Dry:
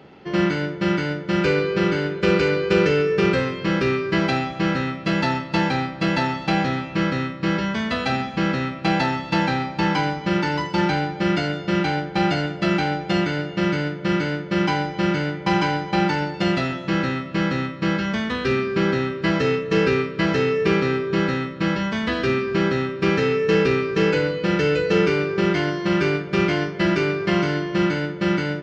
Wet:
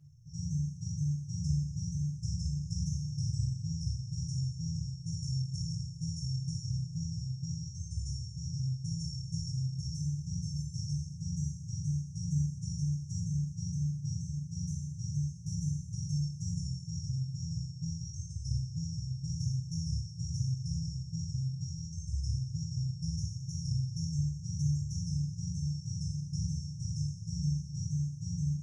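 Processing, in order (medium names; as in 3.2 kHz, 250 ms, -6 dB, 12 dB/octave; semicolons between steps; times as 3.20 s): flange 0.93 Hz, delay 7.9 ms, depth 4.5 ms, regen -30%; brick-wall FIR band-stop 150–5200 Hz; two-slope reverb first 0.6 s, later 3.6 s, from -16 dB, DRR -2.5 dB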